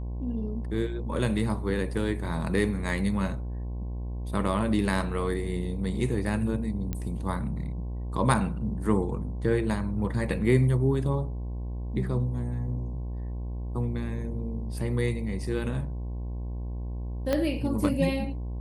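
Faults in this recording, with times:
buzz 60 Hz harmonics 18 -33 dBFS
6.93 pop -18 dBFS
17.33 pop -13 dBFS

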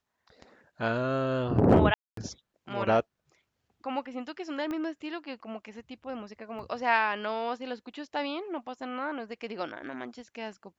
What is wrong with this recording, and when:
1.94–2.17 gap 0.233 s
4.71 pop -23 dBFS
6.59 gap 3.2 ms

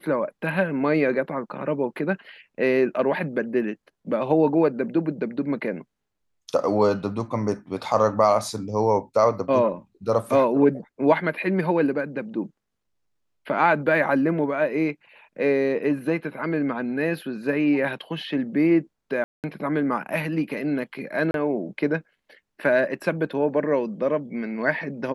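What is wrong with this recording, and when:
19.24–19.44 gap 0.198 s
21.31–21.34 gap 32 ms

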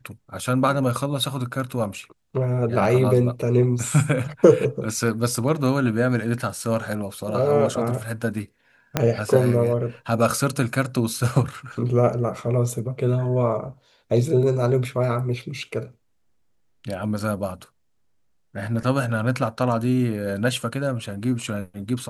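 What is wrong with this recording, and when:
8.97 pop -5 dBFS

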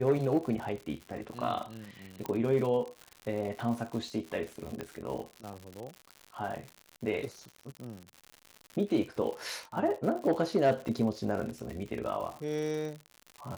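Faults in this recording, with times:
crackle 130/s -37 dBFS
2.26 pop -20 dBFS
4.81 pop -23 dBFS
10.88 gap 4.9 ms

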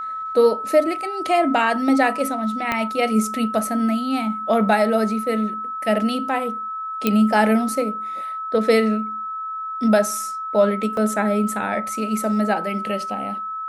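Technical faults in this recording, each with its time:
tone 1300 Hz -26 dBFS
2.72 pop -8 dBFS
7.07 pop -5 dBFS
10.97 gap 2.2 ms

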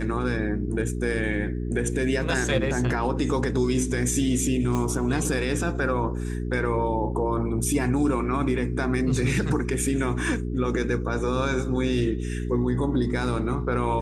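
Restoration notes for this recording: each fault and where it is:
hum 60 Hz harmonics 7 -29 dBFS
4.75 pop -15 dBFS

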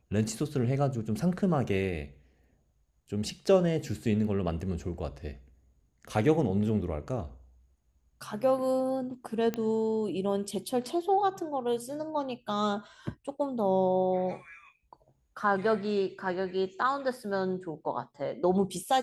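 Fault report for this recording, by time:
9.54 pop -18 dBFS

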